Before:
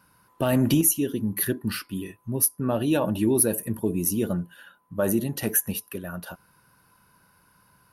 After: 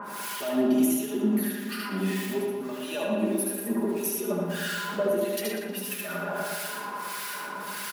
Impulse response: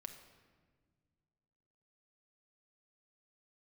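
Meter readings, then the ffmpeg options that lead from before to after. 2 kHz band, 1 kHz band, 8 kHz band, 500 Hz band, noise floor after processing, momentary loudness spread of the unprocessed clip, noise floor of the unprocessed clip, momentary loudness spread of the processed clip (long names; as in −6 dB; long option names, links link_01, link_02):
+4.0 dB, +3.0 dB, −7.5 dB, 0.0 dB, −37 dBFS, 14 LU, −62 dBFS, 9 LU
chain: -filter_complex "[0:a]aeval=exprs='val(0)+0.5*0.02*sgn(val(0))':channel_layout=same,highpass=frequency=260:width=0.5412,highpass=frequency=260:width=1.3066,aecho=1:1:4.9:0.88,acompressor=threshold=-27dB:ratio=2,alimiter=limit=-22dB:level=0:latency=1:release=399,acompressor=mode=upward:threshold=-38dB:ratio=2.5,acrusher=bits=8:mix=0:aa=0.5,flanger=delay=9.3:depth=6.4:regen=56:speed=0.74:shape=sinusoidal,acrossover=split=1400[link_01][link_02];[link_01]aeval=exprs='val(0)*(1-1/2+1/2*cos(2*PI*1.6*n/s))':channel_layout=same[link_03];[link_02]aeval=exprs='val(0)*(1-1/2-1/2*cos(2*PI*1.6*n/s))':channel_layout=same[link_04];[link_03][link_04]amix=inputs=2:normalize=0,asplit=2[link_05][link_06];[link_06]adelay=117,lowpass=frequency=3900:poles=1,volume=-4dB,asplit=2[link_07][link_08];[link_08]adelay=117,lowpass=frequency=3900:poles=1,volume=0.54,asplit=2[link_09][link_10];[link_10]adelay=117,lowpass=frequency=3900:poles=1,volume=0.54,asplit=2[link_11][link_12];[link_12]adelay=117,lowpass=frequency=3900:poles=1,volume=0.54,asplit=2[link_13][link_14];[link_14]adelay=117,lowpass=frequency=3900:poles=1,volume=0.54,asplit=2[link_15][link_16];[link_16]adelay=117,lowpass=frequency=3900:poles=1,volume=0.54,asplit=2[link_17][link_18];[link_18]adelay=117,lowpass=frequency=3900:poles=1,volume=0.54[link_19];[link_05][link_07][link_09][link_11][link_13][link_15][link_17][link_19]amix=inputs=8:normalize=0,asplit=2[link_20][link_21];[1:a]atrim=start_sample=2205,adelay=75[link_22];[link_21][link_22]afir=irnorm=-1:irlink=0,volume=4dB[link_23];[link_20][link_23]amix=inputs=2:normalize=0,adynamicequalizer=threshold=0.002:dfrequency=4900:dqfactor=0.7:tfrequency=4900:tqfactor=0.7:attack=5:release=100:ratio=0.375:range=1.5:mode=cutabove:tftype=highshelf,volume=8.5dB"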